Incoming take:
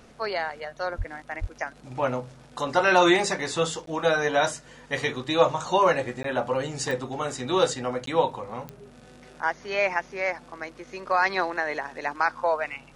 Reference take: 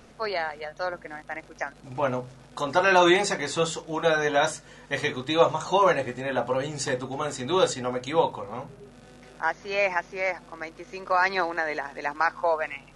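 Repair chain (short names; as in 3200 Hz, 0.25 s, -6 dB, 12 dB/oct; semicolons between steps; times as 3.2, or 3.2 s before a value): de-click; 0.97–1.09 HPF 140 Hz 24 dB/oct; 1.4–1.52 HPF 140 Hz 24 dB/oct; interpolate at 3.86/6.23/8.06, 13 ms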